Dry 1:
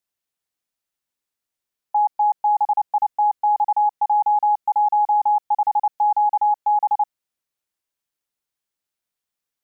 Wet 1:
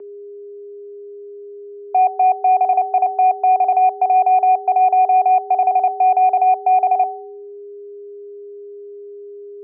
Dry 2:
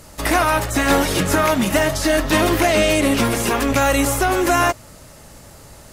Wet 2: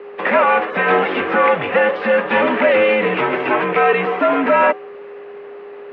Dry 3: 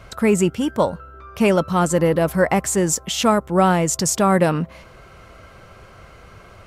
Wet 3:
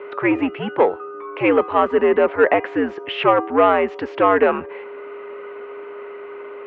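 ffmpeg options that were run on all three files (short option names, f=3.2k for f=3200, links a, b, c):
-af "bandreject=f=422.9:t=h:w=4,bandreject=f=845.8:t=h:w=4,bandreject=f=1.2687k:t=h:w=4,bandreject=f=1.6916k:t=h:w=4,bandreject=f=2.1145k:t=h:w=4,bandreject=f=2.5374k:t=h:w=4,bandreject=f=2.9603k:t=h:w=4,bandreject=f=3.3832k:t=h:w=4,bandreject=f=3.8061k:t=h:w=4,bandreject=f=4.229k:t=h:w=4,bandreject=f=4.6519k:t=h:w=4,bandreject=f=5.0748k:t=h:w=4,bandreject=f=5.4977k:t=h:w=4,bandreject=f=5.9206k:t=h:w=4,bandreject=f=6.3435k:t=h:w=4,bandreject=f=6.7664k:t=h:w=4,bandreject=f=7.1893k:t=h:w=4,bandreject=f=7.6122k:t=h:w=4,bandreject=f=8.0351k:t=h:w=4,bandreject=f=8.458k:t=h:w=4,bandreject=f=8.8809k:t=h:w=4,bandreject=f=9.3038k:t=h:w=4,bandreject=f=9.7267k:t=h:w=4,bandreject=f=10.1496k:t=h:w=4,bandreject=f=10.5725k:t=h:w=4,bandreject=f=10.9954k:t=h:w=4,bandreject=f=11.4183k:t=h:w=4,bandreject=f=11.8412k:t=h:w=4,bandreject=f=12.2641k:t=h:w=4,bandreject=f=12.687k:t=h:w=4,bandreject=f=13.1099k:t=h:w=4,bandreject=f=13.5328k:t=h:w=4,bandreject=f=13.9557k:t=h:w=4,bandreject=f=14.3786k:t=h:w=4,bandreject=f=14.8015k:t=h:w=4,bandreject=f=15.2244k:t=h:w=4,bandreject=f=15.6473k:t=h:w=4,bandreject=f=16.0702k:t=h:w=4,bandreject=f=16.4931k:t=h:w=4,acontrast=39,aeval=exprs='val(0)+0.0251*sin(2*PI*500*n/s)':c=same,aeval=exprs='0.841*(cos(1*acos(clip(val(0)/0.841,-1,1)))-cos(1*PI/2))+0.0376*(cos(5*acos(clip(val(0)/0.841,-1,1)))-cos(5*PI/2))':c=same,highpass=f=410:t=q:w=0.5412,highpass=f=410:t=q:w=1.307,lowpass=f=2.8k:t=q:w=0.5176,lowpass=f=2.8k:t=q:w=0.7071,lowpass=f=2.8k:t=q:w=1.932,afreqshift=-93,volume=-1dB"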